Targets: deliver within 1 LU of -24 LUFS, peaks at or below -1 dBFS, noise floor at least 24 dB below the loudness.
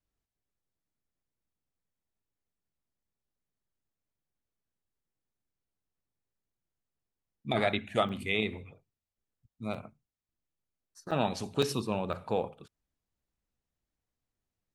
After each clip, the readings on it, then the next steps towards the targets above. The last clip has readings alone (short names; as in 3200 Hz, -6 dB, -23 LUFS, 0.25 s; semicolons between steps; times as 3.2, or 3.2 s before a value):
dropouts 5; longest dropout 5.2 ms; loudness -32.5 LUFS; peak -13.0 dBFS; loudness target -24.0 LUFS
-> interpolate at 8.09/9.74/11.11/11.62/12.13, 5.2 ms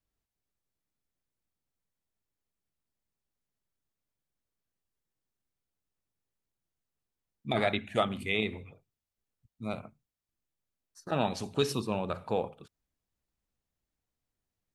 dropouts 0; loudness -32.5 LUFS; peak -13.0 dBFS; loudness target -24.0 LUFS
-> gain +8.5 dB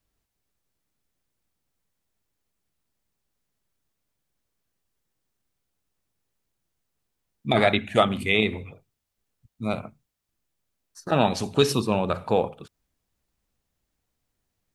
loudness -24.0 LUFS; peak -4.5 dBFS; noise floor -81 dBFS